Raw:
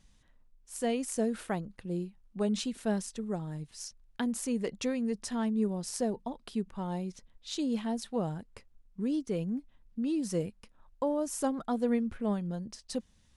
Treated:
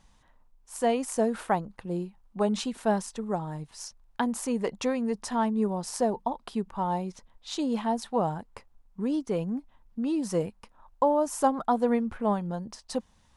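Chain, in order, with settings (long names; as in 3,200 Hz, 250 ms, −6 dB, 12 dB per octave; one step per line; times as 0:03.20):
parametric band 910 Hz +12 dB 1.2 octaves
level +1.5 dB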